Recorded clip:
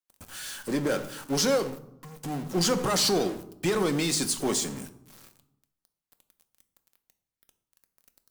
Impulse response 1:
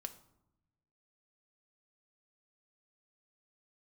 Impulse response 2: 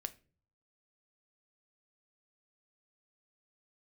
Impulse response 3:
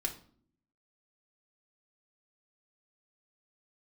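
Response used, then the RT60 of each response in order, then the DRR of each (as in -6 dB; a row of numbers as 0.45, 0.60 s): 1; 0.85 s, not exponential, 0.55 s; 8.0, 10.0, -0.5 dB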